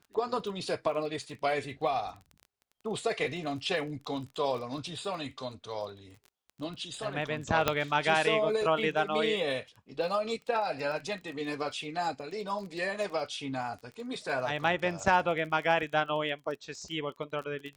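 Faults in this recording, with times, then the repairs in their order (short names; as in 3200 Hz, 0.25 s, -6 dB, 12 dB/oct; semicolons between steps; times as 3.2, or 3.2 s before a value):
crackle 24/s -39 dBFS
7.68 pop -9 dBFS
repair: de-click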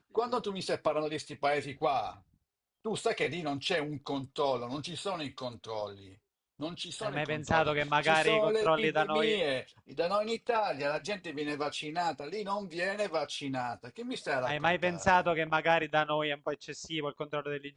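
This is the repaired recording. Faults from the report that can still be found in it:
none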